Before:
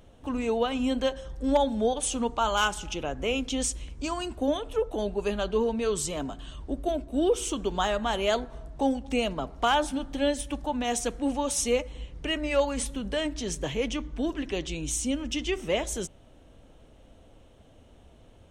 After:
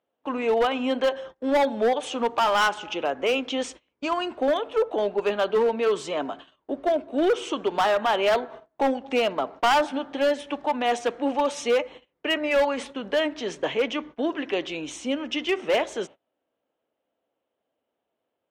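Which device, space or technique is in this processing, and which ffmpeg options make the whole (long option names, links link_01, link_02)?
walkie-talkie: -af "highpass=400,lowpass=2700,asoftclip=type=hard:threshold=-25dB,agate=range=-27dB:threshold=-48dB:ratio=16:detection=peak,volume=8dB"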